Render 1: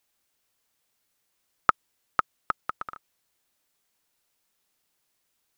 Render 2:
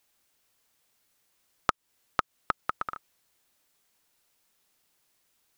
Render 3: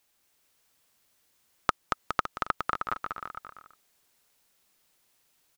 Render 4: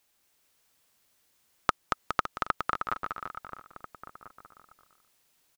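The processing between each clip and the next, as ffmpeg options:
ffmpeg -i in.wav -af "acompressor=threshold=-27dB:ratio=4,volume=3.5dB" out.wav
ffmpeg -i in.wav -af "aecho=1:1:230|414|561.2|679|773.2:0.631|0.398|0.251|0.158|0.1" out.wav
ffmpeg -i in.wav -filter_complex "[0:a]asplit=2[link_01][link_02];[link_02]adelay=1341,volume=-14dB,highshelf=frequency=4000:gain=-30.2[link_03];[link_01][link_03]amix=inputs=2:normalize=0" out.wav

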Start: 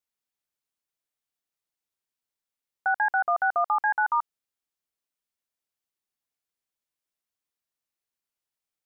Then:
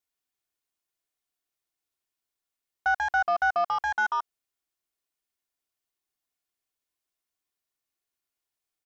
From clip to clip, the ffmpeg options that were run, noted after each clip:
ffmpeg -i in.wav -af "aeval=exprs='0.158*(cos(1*acos(clip(val(0)/0.158,-1,1)))-cos(1*PI/2))+0.01*(cos(5*acos(clip(val(0)/0.158,-1,1)))-cos(5*PI/2))':channel_layout=same,aecho=1:1:2.8:0.34,volume=-1.5dB" out.wav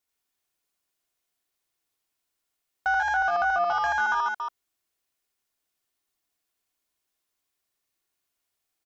ffmpeg -i in.wav -af "aecho=1:1:81.63|279.9:0.794|0.398,alimiter=limit=-20.5dB:level=0:latency=1:release=100,volume=3.5dB" out.wav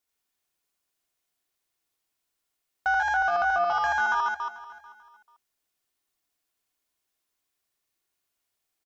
ffmpeg -i in.wav -af "aecho=1:1:440|880:0.119|0.0345" out.wav

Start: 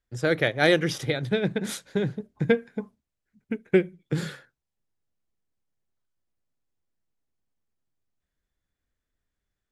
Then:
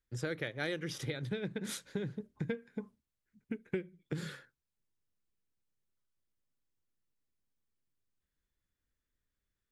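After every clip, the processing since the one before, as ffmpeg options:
ffmpeg -i in.wav -af "equalizer=frequency=710:width_type=o:width=0.49:gain=-7,acompressor=threshold=-31dB:ratio=4,volume=-4dB" out.wav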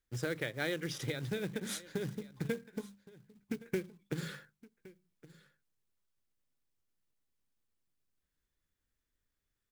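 ffmpeg -i in.wav -af "bandreject=frequency=50:width_type=h:width=6,bandreject=frequency=100:width_type=h:width=6,bandreject=frequency=150:width_type=h:width=6,bandreject=frequency=200:width_type=h:width=6,aecho=1:1:1117:0.1,acrusher=bits=4:mode=log:mix=0:aa=0.000001,volume=1dB" out.wav

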